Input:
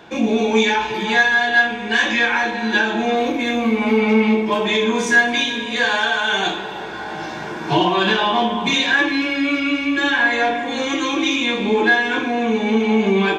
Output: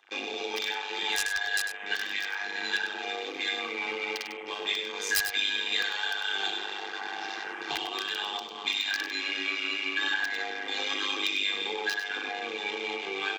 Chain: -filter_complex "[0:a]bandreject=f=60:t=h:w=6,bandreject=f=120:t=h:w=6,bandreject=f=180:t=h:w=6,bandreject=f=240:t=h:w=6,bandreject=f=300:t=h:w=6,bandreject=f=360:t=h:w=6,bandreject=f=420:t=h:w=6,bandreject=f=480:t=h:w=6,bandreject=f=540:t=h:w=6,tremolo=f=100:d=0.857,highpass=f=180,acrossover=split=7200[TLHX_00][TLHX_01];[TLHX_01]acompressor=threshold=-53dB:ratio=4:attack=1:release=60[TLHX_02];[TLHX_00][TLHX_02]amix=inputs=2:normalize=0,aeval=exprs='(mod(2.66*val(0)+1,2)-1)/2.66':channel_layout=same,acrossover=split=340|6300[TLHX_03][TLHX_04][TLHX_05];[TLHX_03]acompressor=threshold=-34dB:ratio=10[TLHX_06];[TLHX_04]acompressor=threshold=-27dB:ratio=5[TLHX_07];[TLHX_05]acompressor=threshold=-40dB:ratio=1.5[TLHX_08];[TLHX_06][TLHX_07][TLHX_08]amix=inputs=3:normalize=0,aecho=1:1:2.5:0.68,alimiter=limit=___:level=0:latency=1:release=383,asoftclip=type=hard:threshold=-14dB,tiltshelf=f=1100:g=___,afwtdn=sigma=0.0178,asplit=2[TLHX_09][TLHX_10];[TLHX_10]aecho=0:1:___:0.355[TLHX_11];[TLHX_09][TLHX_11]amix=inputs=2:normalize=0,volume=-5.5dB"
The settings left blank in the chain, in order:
-12.5dB, -8.5, 99